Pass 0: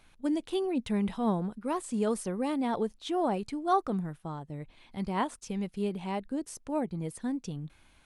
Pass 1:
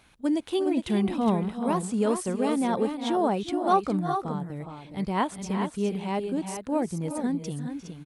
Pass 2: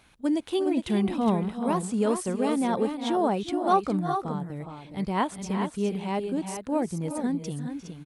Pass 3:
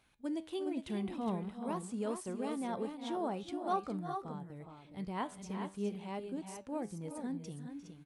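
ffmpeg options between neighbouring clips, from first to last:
-af "highpass=44,aecho=1:1:350|367|397|414:0.178|0.141|0.141|0.422,volume=4dB"
-af anull
-af "flanger=delay=7.5:depth=4.5:regen=83:speed=0.47:shape=triangular,volume=-7.5dB"

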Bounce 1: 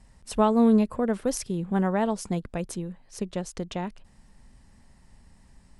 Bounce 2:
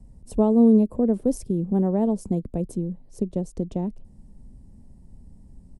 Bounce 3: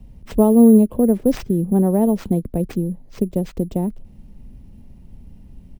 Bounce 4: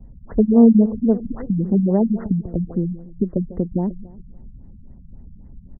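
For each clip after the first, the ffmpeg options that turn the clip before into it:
-filter_complex "[0:a]firequalizer=gain_entry='entry(260,0);entry(1400,-27);entry(9000,-13)':delay=0.05:min_phase=1,acrossover=split=230|890[a][b][c];[a]acompressor=threshold=-36dB:ratio=6[d];[d][b][c]amix=inputs=3:normalize=0,volume=8dB"
-af "acrusher=samples=4:mix=1:aa=0.000001,volume=5.5dB"
-filter_complex "[0:a]asplit=2[a][b];[b]adelay=145,lowpass=f=3.6k:p=1,volume=-17dB,asplit=2[c][d];[d]adelay=145,lowpass=f=3.6k:p=1,volume=0.48,asplit=2[e][f];[f]adelay=145,lowpass=f=3.6k:p=1,volume=0.48,asplit=2[g][h];[h]adelay=145,lowpass=f=3.6k:p=1,volume=0.48[i];[a][c][e][g][i]amix=inputs=5:normalize=0,afftfilt=real='re*lt(b*sr/1024,200*pow(2100/200,0.5+0.5*sin(2*PI*3.7*pts/sr)))':imag='im*lt(b*sr/1024,200*pow(2100/200,0.5+0.5*sin(2*PI*3.7*pts/sr)))':win_size=1024:overlap=0.75"

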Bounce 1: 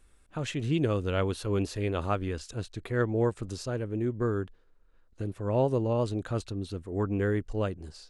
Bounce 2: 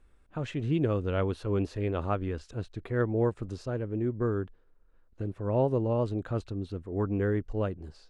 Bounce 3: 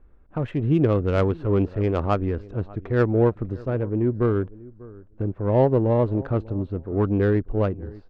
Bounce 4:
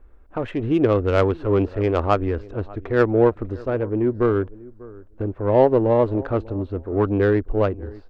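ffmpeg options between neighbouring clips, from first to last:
-af "lowpass=f=1.7k:p=1"
-af "aecho=1:1:594|1188:0.0944|0.0151,adynamicsmooth=sensitivity=2:basefreq=1.4k,volume=8dB"
-af "equalizer=f=150:w=1.5:g=-13.5,volume=5dB"

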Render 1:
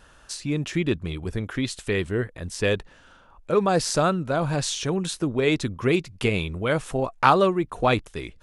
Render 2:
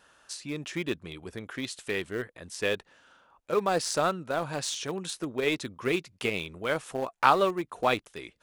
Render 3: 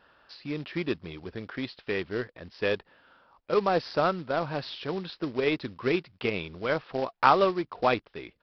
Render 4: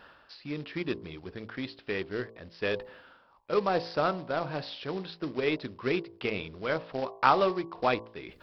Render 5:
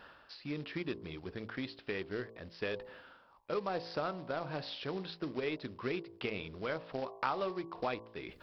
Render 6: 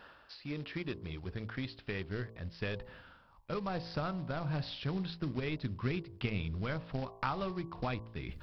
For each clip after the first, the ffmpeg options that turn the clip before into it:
-filter_complex "[0:a]highpass=f=370:p=1,asplit=2[a][b];[b]aeval=exprs='val(0)*gte(abs(val(0)),0.0841)':c=same,volume=-11.5dB[c];[a][c]amix=inputs=2:normalize=0,volume=-5dB"
-af "highshelf=f=2.9k:g=-9,aresample=11025,acrusher=bits=4:mode=log:mix=0:aa=0.000001,aresample=44100,volume=2dB"
-af "areverse,acompressor=mode=upward:threshold=-39dB:ratio=2.5,areverse,bandreject=f=56.26:t=h:w=4,bandreject=f=112.52:t=h:w=4,bandreject=f=168.78:t=h:w=4,bandreject=f=225.04:t=h:w=4,bandreject=f=281.3:t=h:w=4,bandreject=f=337.56:t=h:w=4,bandreject=f=393.82:t=h:w=4,bandreject=f=450.08:t=h:w=4,bandreject=f=506.34:t=h:w=4,bandreject=f=562.6:t=h:w=4,bandreject=f=618.86:t=h:w=4,bandreject=f=675.12:t=h:w=4,bandreject=f=731.38:t=h:w=4,bandreject=f=787.64:t=h:w=4,bandreject=f=843.9:t=h:w=4,bandreject=f=900.16:t=h:w=4,bandreject=f=956.42:t=h:w=4,bandreject=f=1.01268k:t=h:w=4,bandreject=f=1.06894k:t=h:w=4,bandreject=f=1.1252k:t=h:w=4,volume=-2dB"
-af "acompressor=threshold=-34dB:ratio=2.5,volume=-1.5dB"
-af "asubboost=boost=8:cutoff=150"

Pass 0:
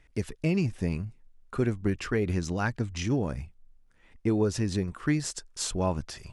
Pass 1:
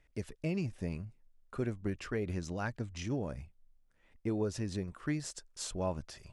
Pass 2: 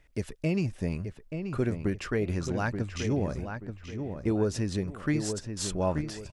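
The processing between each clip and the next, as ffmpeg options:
-af "equalizer=f=590:t=o:w=0.4:g=5,volume=-8.5dB"
-filter_complex "[0:a]asplit=2[a][b];[b]adelay=881,lowpass=f=2.7k:p=1,volume=-7dB,asplit=2[c][d];[d]adelay=881,lowpass=f=2.7k:p=1,volume=0.35,asplit=2[e][f];[f]adelay=881,lowpass=f=2.7k:p=1,volume=0.35,asplit=2[g][h];[h]adelay=881,lowpass=f=2.7k:p=1,volume=0.35[i];[a][c][e][g][i]amix=inputs=5:normalize=0,volume=6.5dB"

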